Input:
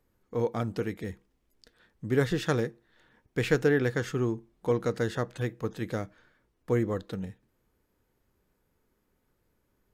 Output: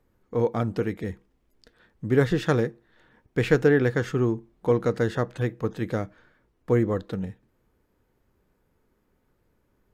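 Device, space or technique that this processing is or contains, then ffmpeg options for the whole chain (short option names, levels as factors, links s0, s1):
behind a face mask: -af "highshelf=f=3100:g=-7.5,volume=1.78"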